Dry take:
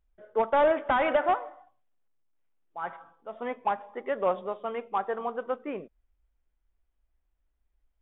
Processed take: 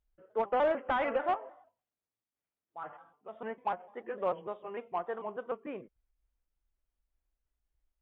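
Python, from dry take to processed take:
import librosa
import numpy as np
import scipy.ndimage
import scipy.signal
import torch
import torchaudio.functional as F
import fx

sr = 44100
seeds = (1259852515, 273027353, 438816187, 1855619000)

y = fx.pitch_trill(x, sr, semitones=-2.0, every_ms=149)
y = fx.cheby_harmonics(y, sr, harmonics=(7,), levels_db=(-42,), full_scale_db=-14.5)
y = F.gain(torch.from_numpy(y), -5.5).numpy()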